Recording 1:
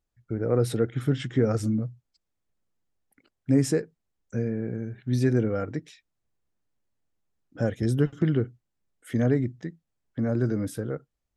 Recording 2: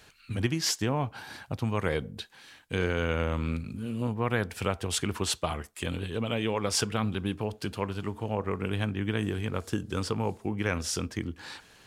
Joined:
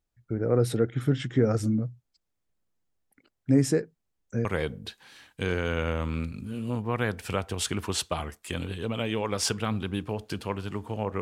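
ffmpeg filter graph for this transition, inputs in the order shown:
-filter_complex "[0:a]apad=whole_dur=11.21,atrim=end=11.21,atrim=end=4.452[a];[1:a]atrim=start=1.768:end=8.53[b];[a][b]acrossfade=d=0.004:c1=hsin:c2=hsin"

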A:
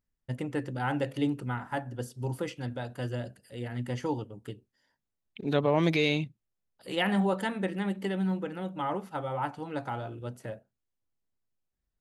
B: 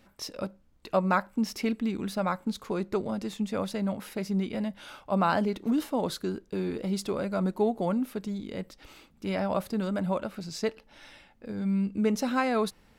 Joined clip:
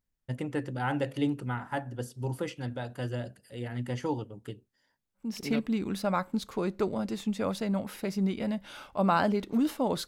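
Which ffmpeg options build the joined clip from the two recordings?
-filter_complex "[0:a]apad=whole_dur=10.07,atrim=end=10.07,atrim=end=5.66,asetpts=PTS-STARTPTS[a];[1:a]atrim=start=1.27:end=6.2,asetpts=PTS-STARTPTS[b];[a][b]acrossfade=d=0.52:c1=qsin:c2=qsin"

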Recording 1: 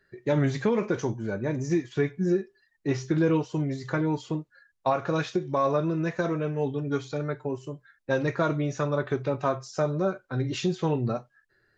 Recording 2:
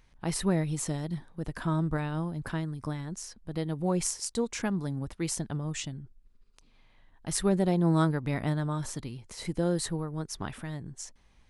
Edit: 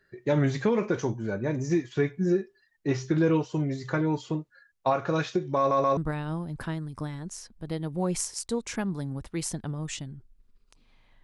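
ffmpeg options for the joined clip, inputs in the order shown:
-filter_complex "[0:a]apad=whole_dur=11.23,atrim=end=11.23,asplit=3[a][b][c];[a]atrim=end=5.712[d];[b]atrim=start=5.578:end=5.712[e];[c]atrim=start=5.578:end=5.712[f];[1:a]atrim=start=1.828:end=7.09[g];[d][e]acrossfade=d=0.004:c1=hsin:c2=hsin[h];[h][f]acrossfade=d=0.004:c1=hsin:c2=hsin[i];[i][g]acrossfade=d=0.004:c1=hsin:c2=hsin"

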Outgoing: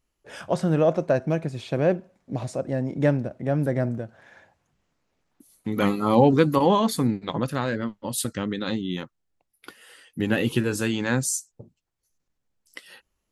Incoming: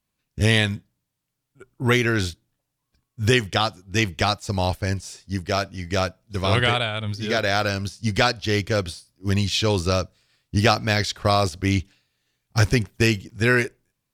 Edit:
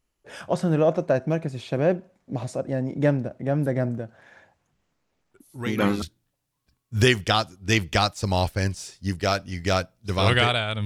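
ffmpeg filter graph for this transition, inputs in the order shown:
-filter_complex "[1:a]asplit=2[a][b];[0:a]apad=whole_dur=10.85,atrim=end=10.85,atrim=end=6.022[c];[b]atrim=start=2.278:end=7.11[d];[a]atrim=start=1.6:end=2.28,asetpts=PTS-STARTPTS,volume=-13dB,afade=t=in:d=0.004:c=hsin,afade=t=out:st=0.676:d=0.004:c=hsin,adelay=5340[e];[c][d]acrossfade=d=0.004:c1=hsin:c2=hsin[f];[f][e]amix=inputs=2:normalize=0"

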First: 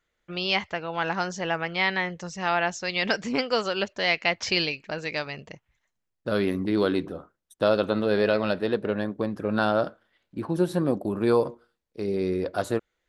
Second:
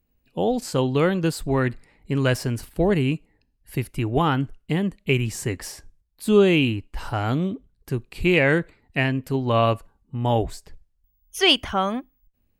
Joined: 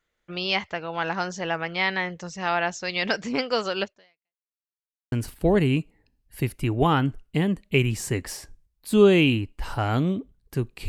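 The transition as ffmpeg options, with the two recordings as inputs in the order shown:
-filter_complex "[0:a]apad=whole_dur=10.88,atrim=end=10.88,asplit=2[a][b];[a]atrim=end=4.48,asetpts=PTS-STARTPTS,afade=t=out:st=3.83:d=0.65:c=exp[c];[b]atrim=start=4.48:end=5.12,asetpts=PTS-STARTPTS,volume=0[d];[1:a]atrim=start=2.47:end=8.23,asetpts=PTS-STARTPTS,afade=t=in:d=0.004:c=hsin[e];[c][d][e]concat=n=3:v=0:a=1"

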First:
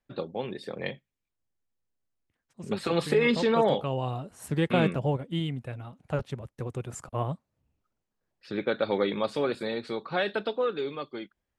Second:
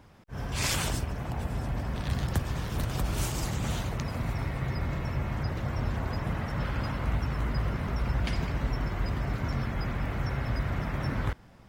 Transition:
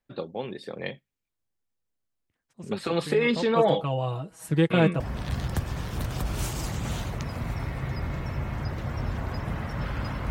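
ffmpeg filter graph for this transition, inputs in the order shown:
-filter_complex "[0:a]asettb=1/sr,asplit=3[a][b][c];[a]atrim=end=3.554[d];[b]atrim=start=3.55:end=5,asetpts=PTS-STARTPTS,afade=t=in:d=0.004:c=qsin,afade=t=out:st=1.446:d=0.004:c=qsin,aecho=1:1:6.2:0.77,atrim=end_sample=63945[e];[c]atrim=start=4.996[f];[d][e]acrossfade=d=0.004:c1=hsin:c2=qsin[g];[g][f]acrossfade=d=0.004:c1=qsin:c2=hsin,apad=whole_dur=10.3,atrim=end=10.3,atrim=end=5.002[h];[1:a]atrim=start=1.788:end=7.09[i];[h][i]acrossfade=d=0.004:c1=hsin:c2=hsin"

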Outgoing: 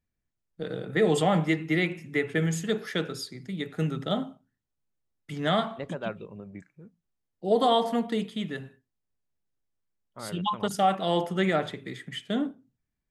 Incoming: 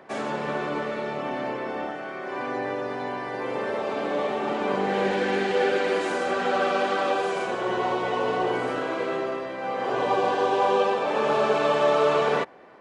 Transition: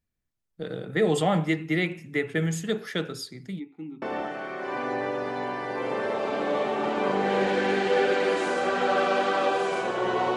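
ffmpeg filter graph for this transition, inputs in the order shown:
-filter_complex "[0:a]asplit=3[a][b][c];[a]afade=t=out:st=3.58:d=0.02[d];[b]asplit=3[e][f][g];[e]bandpass=f=300:t=q:w=8,volume=0dB[h];[f]bandpass=f=870:t=q:w=8,volume=-6dB[i];[g]bandpass=f=2.24k:t=q:w=8,volume=-9dB[j];[h][i][j]amix=inputs=3:normalize=0,afade=t=in:st=3.58:d=0.02,afade=t=out:st=4.02:d=0.02[k];[c]afade=t=in:st=4.02:d=0.02[l];[d][k][l]amix=inputs=3:normalize=0,apad=whole_dur=10.36,atrim=end=10.36,atrim=end=4.022[m];[1:a]atrim=start=1.658:end=8[n];[m][n]acrossfade=d=0.004:c1=hsin:c2=hsin"

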